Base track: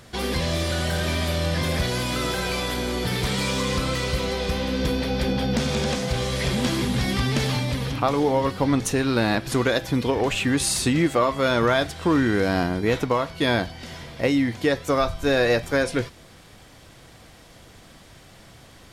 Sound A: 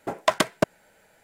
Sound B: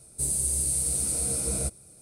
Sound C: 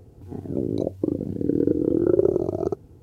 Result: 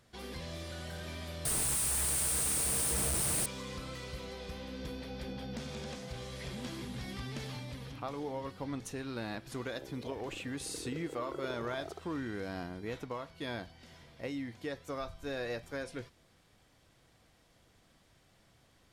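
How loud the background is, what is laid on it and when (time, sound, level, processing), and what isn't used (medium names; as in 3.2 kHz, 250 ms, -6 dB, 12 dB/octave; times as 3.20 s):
base track -18 dB
1.45 s: replace with B -3 dB + one-bit comparator
9.25 s: add C -7.5 dB + high-pass 960 Hz
not used: A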